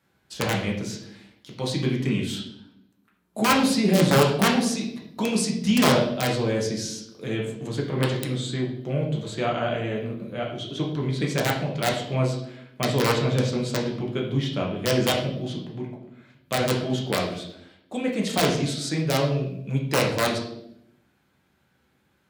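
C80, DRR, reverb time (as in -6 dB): 9.0 dB, -2.0 dB, 0.75 s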